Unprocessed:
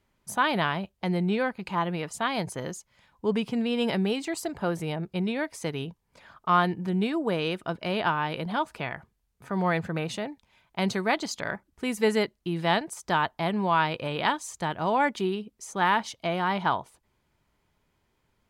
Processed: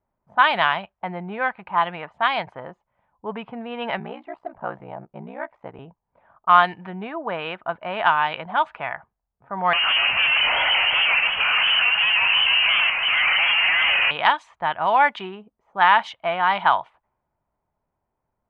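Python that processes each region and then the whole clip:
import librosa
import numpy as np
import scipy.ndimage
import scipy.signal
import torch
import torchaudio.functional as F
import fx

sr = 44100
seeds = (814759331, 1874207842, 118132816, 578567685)

y = fx.chain(x, sr, fx.high_shelf(hz=3700.0, db=-6.5),
    fx.ring_mod(carrier_hz=31.0), at=(3.99, 5.79))
y = fx.chain(y, sr, fx.clip_1bit(),
    fx.freq_invert(carrier_hz=3000),
    fx.echo_warbled(ms=151, feedback_pct=64, rate_hz=2.8, cents=161, wet_db=-6.0), at=(9.73, 14.11))
y = fx.band_shelf(y, sr, hz=1500.0, db=16.0, octaves=2.9)
y = fx.env_lowpass(y, sr, base_hz=510.0, full_db=-6.0)
y = y * librosa.db_to_amplitude(-7.5)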